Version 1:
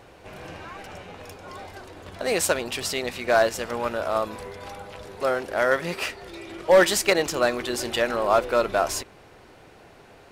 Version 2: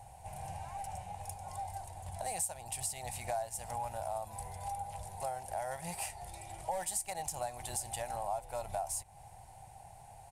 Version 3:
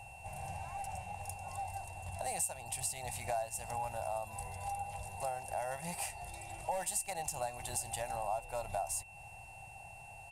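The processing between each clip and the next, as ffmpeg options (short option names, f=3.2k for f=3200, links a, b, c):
-af "firequalizer=gain_entry='entry(120,0);entry(260,-24);entry(420,-25);entry(790,5);entry(1200,-22);entry(2000,-14);entry(3500,-15);entry(5600,-8);entry(9000,9);entry(15000,-5)':delay=0.05:min_phase=1,acompressor=threshold=-37dB:ratio=4,volume=1dB"
-af "aeval=exprs='val(0)+0.00224*sin(2*PI*2700*n/s)':c=same"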